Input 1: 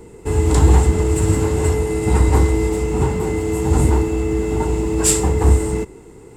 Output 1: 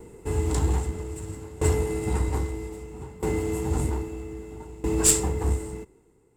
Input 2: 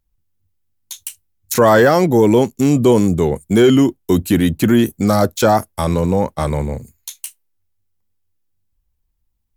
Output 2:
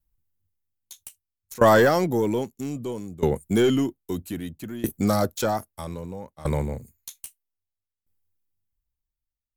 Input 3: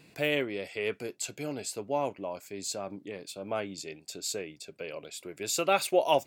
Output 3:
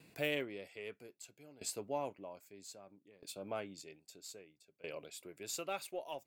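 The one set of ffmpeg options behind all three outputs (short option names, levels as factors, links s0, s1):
-filter_complex "[0:a]highshelf=f=6900:g=11.5,aeval=exprs='1.68*(cos(1*acos(clip(val(0)/1.68,-1,1)))-cos(1*PI/2))+0.299*(cos(3*acos(clip(val(0)/1.68,-1,1)))-cos(3*PI/2))+0.0422*(cos(4*acos(clip(val(0)/1.68,-1,1)))-cos(4*PI/2))+0.0473*(cos(5*acos(clip(val(0)/1.68,-1,1)))-cos(5*PI/2))':c=same,asplit=2[s0][s1];[s1]adynamicsmooth=sensitivity=5:basefreq=3900,volume=0.841[s2];[s0][s2]amix=inputs=2:normalize=0,aeval=exprs='val(0)*pow(10,-20*if(lt(mod(0.62*n/s,1),2*abs(0.62)/1000),1-mod(0.62*n/s,1)/(2*abs(0.62)/1000),(mod(0.62*n/s,1)-2*abs(0.62)/1000)/(1-2*abs(0.62)/1000))/20)':c=same,volume=0.562"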